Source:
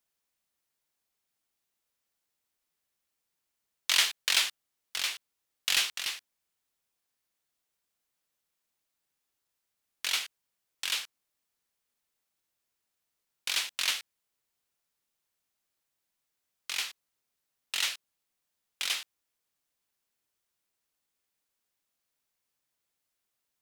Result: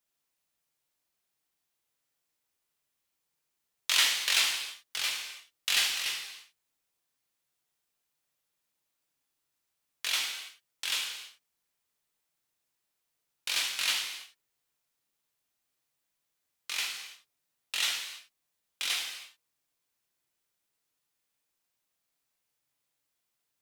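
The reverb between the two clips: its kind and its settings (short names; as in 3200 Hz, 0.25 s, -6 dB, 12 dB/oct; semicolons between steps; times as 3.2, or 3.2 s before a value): non-linear reverb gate 0.35 s falling, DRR 0 dB; gain -2 dB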